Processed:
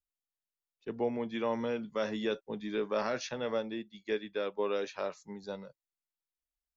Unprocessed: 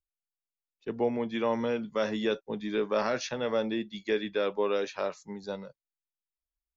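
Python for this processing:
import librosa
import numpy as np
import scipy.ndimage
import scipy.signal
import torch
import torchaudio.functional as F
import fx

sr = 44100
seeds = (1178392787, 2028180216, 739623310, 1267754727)

y = fx.upward_expand(x, sr, threshold_db=-40.0, expansion=1.5, at=(3.58, 4.59))
y = y * librosa.db_to_amplitude(-4.0)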